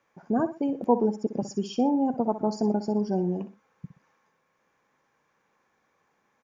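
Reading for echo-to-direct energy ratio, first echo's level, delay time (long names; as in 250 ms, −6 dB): −12.0 dB, −12.5 dB, 62 ms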